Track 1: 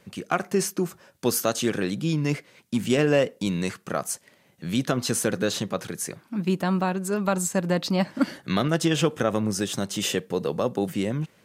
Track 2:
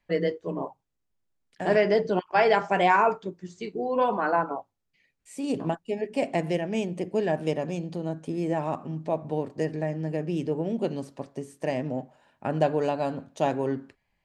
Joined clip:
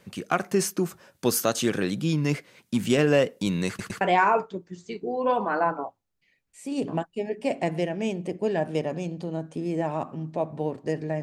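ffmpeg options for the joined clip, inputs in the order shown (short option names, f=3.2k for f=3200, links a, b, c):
-filter_complex "[0:a]apad=whole_dur=11.22,atrim=end=11.22,asplit=3[a][b][c];[a]atrim=end=3.792[d];[b]atrim=start=3.678:end=3.792[e];[c]atrim=start=3.678:end=3.792[f];[1:a]atrim=start=2.728:end=9.94[g];[d][e]acrossfade=d=0.004:c1=hsin:c2=hsin[h];[h][f]acrossfade=d=0.004:c1=hsin:c2=hsin[i];[i][g]acrossfade=d=0.004:c1=hsin:c2=hsin"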